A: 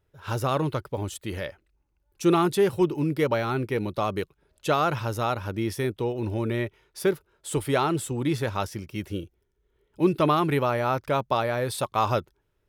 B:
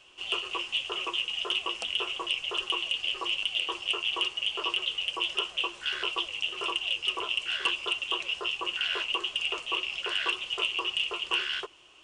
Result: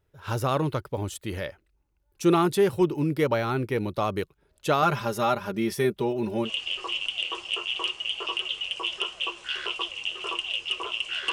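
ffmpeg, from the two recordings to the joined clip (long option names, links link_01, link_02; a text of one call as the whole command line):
ffmpeg -i cue0.wav -i cue1.wav -filter_complex "[0:a]asettb=1/sr,asplit=3[link_01][link_02][link_03];[link_01]atrim=end=4.824[link_04];[link_02]atrim=start=4.82:end=6.5,asetpts=PTS-STARTPTS,afade=type=in:duration=0.004:curve=qsin,afade=type=out:start_time=1.676:duration=0.004:curve=qsin,aecho=1:1:5:0.8,atrim=end_sample=74088[link_05];[link_03]atrim=start=6.496[link_06];[link_04][link_05]acrossfade=duration=0.004:curve1=hsin:curve2=qsin[link_07];[link_07][link_06]acrossfade=duration=0.004:curve1=qsin:curve2=hsin,apad=whole_dur=11.32,atrim=end=11.32,atrim=end=6.5,asetpts=PTS-STARTPTS[link_08];[1:a]atrim=start=2.79:end=7.69,asetpts=PTS-STARTPTS[link_09];[link_08][link_09]acrossfade=duration=0.08:curve1=tri:curve2=tri" out.wav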